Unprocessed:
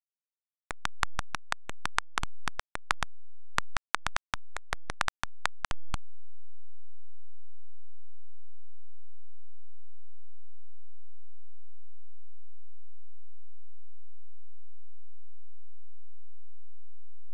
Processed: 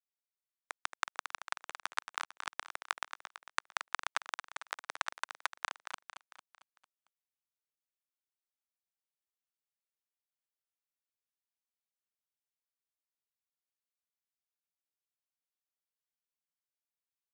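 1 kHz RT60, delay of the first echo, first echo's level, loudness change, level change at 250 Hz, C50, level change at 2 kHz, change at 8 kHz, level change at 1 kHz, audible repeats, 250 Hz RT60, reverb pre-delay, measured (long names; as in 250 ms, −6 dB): no reverb audible, 225 ms, −9.0 dB, −4.5 dB, −17.5 dB, no reverb audible, −4.0 dB, −4.0 dB, −4.5 dB, 5, no reverb audible, no reverb audible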